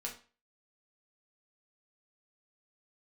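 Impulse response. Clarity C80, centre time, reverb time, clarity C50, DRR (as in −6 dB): 15.0 dB, 19 ms, 0.35 s, 9.5 dB, −2.0 dB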